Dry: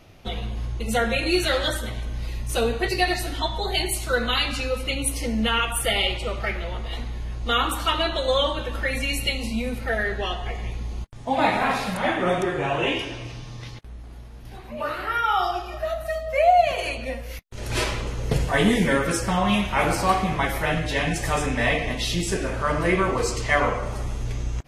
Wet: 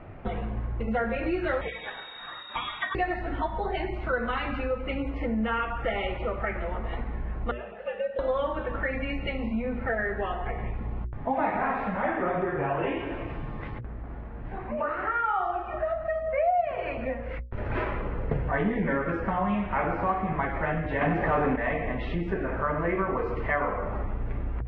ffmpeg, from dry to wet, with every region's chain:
-filter_complex "[0:a]asettb=1/sr,asplit=3[s0][s1][s2];[s0]atrim=end=1.614[s3];[s1]atrim=start=1.61:end=2.95,asetpts=PTS-STARTPTS,afade=t=in:d=0.004:c=qsin,afade=t=out:st=1.336:d=0.004:c=qsin,equalizer=f=660:w=8:g=-14.5,lowpass=f=3200:t=q:w=0.5098,lowpass=f=3200:t=q:w=0.6013,lowpass=f=3200:t=q:w=0.9,lowpass=f=3200:t=q:w=2.563,afreqshift=-3800[s4];[s2]atrim=start=2.946[s5];[s3][s4]acrossfade=d=0.004:c1=hsin:c2=qsin[s6];[s6][s5]acrossfade=d=0.004:c1=qsin:c2=hsin,asettb=1/sr,asplit=3[s7][s8][s9];[s7]atrim=end=7.514[s10];[s8]atrim=start=7.51:end=8.19,asetpts=PTS-STARTPTS,afade=t=in:d=0.004:c=qsin,afade=t=out:st=0.676:d=0.004:c=qsin,afreqshift=-110,asplit=3[s11][s12][s13];[s11]bandpass=f=530:t=q:w=8,volume=1[s14];[s12]bandpass=f=1840:t=q:w=8,volume=0.501[s15];[s13]bandpass=f=2480:t=q:w=8,volume=0.355[s16];[s14][s15][s16]amix=inputs=3:normalize=0[s17];[s9]atrim=start=8.186[s18];[s10][s17]acrossfade=d=0.004:c1=hsin:c2=qsin[s19];[s19][s18]acrossfade=d=0.004:c1=qsin:c2=hsin,asettb=1/sr,asplit=3[s20][s21][s22];[s20]atrim=end=21.014[s23];[s21]atrim=start=21.01:end=21.56,asetpts=PTS-STARTPTS,afade=t=in:d=0.004:c=qsin,afade=t=out:st=0.546:d=0.004:c=qsin,tiltshelf=f=770:g=6.5,asplit=2[s24][s25];[s25]highpass=f=720:p=1,volume=14.1,asoftclip=type=tanh:threshold=0.355[s26];[s24][s26]amix=inputs=2:normalize=0,lowpass=f=6100:p=1,volume=0.501[s27];[s22]atrim=start=21.556[s28];[s23][s27]acrossfade=d=0.004:c1=hsin:c2=qsin[s29];[s29][s28]acrossfade=d=0.004:c1=qsin:c2=hsin,lowpass=f=1900:w=0.5412,lowpass=f=1900:w=1.3066,bandreject=f=60:t=h:w=6,bandreject=f=120:t=h:w=6,bandreject=f=180:t=h:w=6,bandreject=f=240:t=h:w=6,bandreject=f=300:t=h:w=6,bandreject=f=360:t=h:w=6,bandreject=f=420:t=h:w=6,bandreject=f=480:t=h:w=6,bandreject=f=540:t=h:w=6,acompressor=threshold=0.0141:ratio=2.5,volume=2.24"

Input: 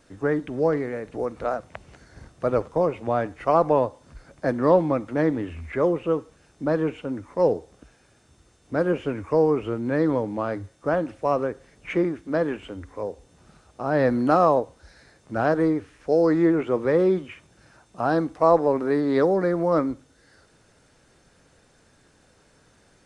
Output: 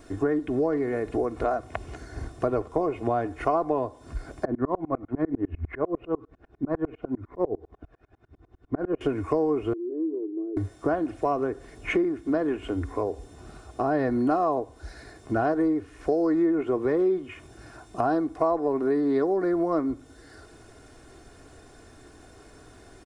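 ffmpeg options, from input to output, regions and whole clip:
-filter_complex "[0:a]asettb=1/sr,asplit=3[s0][s1][s2];[s0]atrim=end=4.454[s3];[s1]atrim=start=4.45:end=9.01,asetpts=PTS-STARTPTS,afade=t=in:d=0.004:c=qsin,afade=t=out:st=4.556:d=0.004:c=qsin,lowpass=2000,aphaser=in_gain=1:out_gain=1:delay=1.8:decay=0.32:speed=1:type=triangular,aeval=exprs='val(0)*pow(10,-33*if(lt(mod(-10*n/s,1),2*abs(-10)/1000),1-mod(-10*n/s,1)/(2*abs(-10)/1000),(mod(-10*n/s,1)-2*abs(-10)/1000)/(1-2*abs(-10)/1000))/20)':c=same[s4];[s2]atrim=start=9.006[s5];[s3][s4]acrossfade=d=0.004:c1=hsin:c2=qsin[s6];[s6][s5]acrossfade=d=0.004:c1=qsin:c2=hsin,asettb=1/sr,asplit=3[s7][s8][s9];[s7]atrim=end=9.734[s10];[s8]atrim=start=9.73:end=10.57,asetpts=PTS-STARTPTS,afade=t=in:d=0.004:c=qsin,afade=t=out:st=0.836:d=0.004:c=qsin,asuperpass=centerf=360:order=4:qfactor=5.6,aemphasis=mode=production:type=bsi,acompressor=threshold=0.0126:ratio=2.5:attack=3.2:release=140:knee=1:detection=peak[s11];[s9]atrim=start=10.566[s12];[s10][s11]acrossfade=d=0.004:c1=hsin:c2=qsin[s13];[s13][s12]acrossfade=d=0.004:c1=qsin:c2=hsin,equalizer=f=3800:w=0.39:g=-7,aecho=1:1:2.8:0.61,acompressor=threshold=0.0224:ratio=4,volume=2.82"

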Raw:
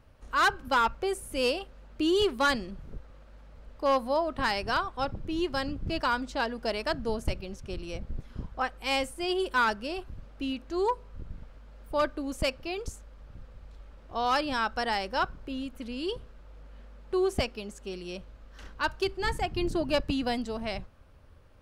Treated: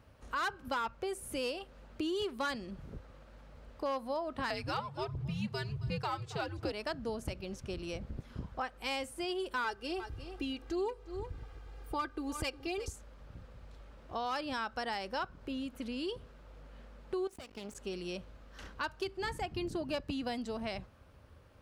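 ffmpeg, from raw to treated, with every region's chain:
-filter_complex "[0:a]asettb=1/sr,asplit=3[s0][s1][s2];[s0]atrim=end=4.504[s3];[s1]atrim=start=4.5:end=6.72,asetpts=PTS-STARTPTS,afade=t=in:d=0.004:c=qsin,afade=t=out:st=2.216:d=0.004:c=qsin,aecho=1:1:271:0.0944,atrim=end_sample=97902,aphaser=in_gain=1:out_gain=1:delay=3.3:decay=0.42:speed=1.4:type=sinusoidal,afreqshift=-150[s4];[s2]atrim=start=6.716[s5];[s3][s4]acrossfade=d=0.004:c1=hsin:c2=qsin[s6];[s6][s5]acrossfade=d=0.004:c1=qsin:c2=hsin,asettb=1/sr,asplit=3[s7][s8][s9];[s7]atrim=end=9.644[s10];[s8]atrim=start=9.64:end=12.93,asetpts=PTS-STARTPTS,afade=t=in:d=0.004:c=qsin,afade=t=out:st=3.286:d=0.004:c=qsin,aecho=1:1:2.5:0.79,atrim=end_sample=145089,aecho=1:1:357:0.15,atrim=end_sample=145089[s11];[s9]atrim=start=12.926[s12];[s10][s11]acrossfade=d=0.004:c1=hsin:c2=qsin[s13];[s13][s12]acrossfade=d=0.004:c1=qsin:c2=hsin,asettb=1/sr,asplit=3[s14][s15][s16];[s14]atrim=end=17.274[s17];[s15]atrim=start=17.27:end=17.75,asetpts=PTS-STARTPTS,afade=t=in:d=0.004:c=qsin,afade=t=out:st=0.476:d=0.004:c=qsin,acompressor=threshold=0.0178:ratio=12:attack=3.2:release=140:knee=1:detection=peak,aeval=exprs='max(val(0),0)':c=same[s18];[s16]atrim=start=17.746[s19];[s17][s18]acrossfade=d=0.004:c1=hsin:c2=qsin[s20];[s20][s19]acrossfade=d=0.004:c1=qsin:c2=hsin,highpass=59,acompressor=threshold=0.0158:ratio=3"

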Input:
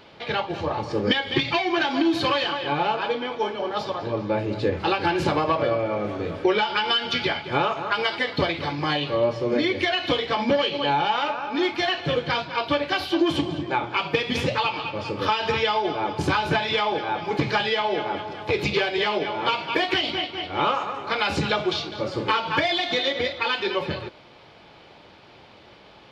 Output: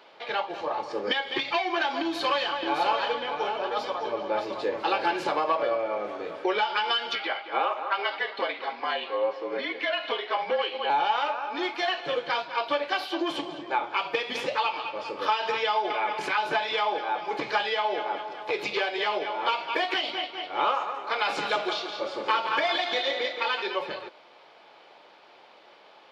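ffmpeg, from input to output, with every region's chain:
-filter_complex "[0:a]asettb=1/sr,asplit=3[s0][s1][s2];[s0]atrim=end=2.014[s3];[s1]atrim=start=2.01:end=5.19,asetpts=PTS-STARTPTS,afade=t=in:d=0.004:c=qsin,afade=t=out:st=3.176:d=0.004:c=qsin,highshelf=f=7800:g=5.5,aecho=1:1:616:0.531,atrim=end_sample=140238,aeval=exprs='val(0)+0.0224*(sin(2*PI*60*n/s)+sin(2*PI*2*60*n/s)/2+sin(2*PI*3*60*n/s)/3+sin(2*PI*4*60*n/s)/4+sin(2*PI*5*60*n/s)/5)':c=same[s4];[s2]atrim=start=5.186[s5];[s3][s4]acrossfade=d=0.004:c1=hsin:c2=qsin[s6];[s6][s5]acrossfade=d=0.004:c1=qsin:c2=hsin,asettb=1/sr,asplit=3[s7][s8][s9];[s7]atrim=end=7.154[s10];[s8]atrim=start=7.15:end=10.9,asetpts=PTS-STARTPTS,afade=t=in:d=0.004:c=qsin,afade=t=out:st=3.746:d=0.004:c=qsin,highpass=410,lowpass=3600,afreqshift=-47[s11];[s9]atrim=start=10.896[s12];[s10][s11]acrossfade=d=0.004:c1=hsin:c2=qsin[s13];[s13][s12]acrossfade=d=0.004:c1=qsin:c2=hsin,asettb=1/sr,asplit=3[s14][s15][s16];[s14]atrim=end=15.904[s17];[s15]atrim=start=15.9:end=16.38,asetpts=PTS-STARTPTS,afade=t=in:d=0.004:c=qsin,afade=t=out:st=0.476:d=0.004:c=qsin,equalizer=f=2100:t=o:w=1:g=12.5,acompressor=threshold=0.0794:ratio=2.5:attack=3.2:release=140:knee=1:detection=peak,aecho=1:1:4.8:0.36,atrim=end_sample=21168[s18];[s16]atrim=start=16.376[s19];[s17][s18]acrossfade=d=0.004:c1=hsin:c2=qsin[s20];[s20][s19]acrossfade=d=0.004:c1=qsin:c2=hsin,asettb=1/sr,asplit=3[s21][s22][s23];[s21]atrim=end=20.944[s24];[s22]atrim=start=20.94:end=23.62,asetpts=PTS-STARTPTS,afade=t=in:d=0.004:c=qsin,afade=t=out:st=2.676:d=0.004:c=qsin,highpass=97,aecho=1:1:170|340|510|680|850:0.422|0.169|0.0675|0.027|0.0108,atrim=end_sample=118188[s25];[s23]atrim=start=23.616[s26];[s24][s25]acrossfade=d=0.004:c1=hsin:c2=qsin[s27];[s27][s26]acrossfade=d=0.004:c1=qsin:c2=hsin,highpass=710,tiltshelf=f=900:g=5.5"

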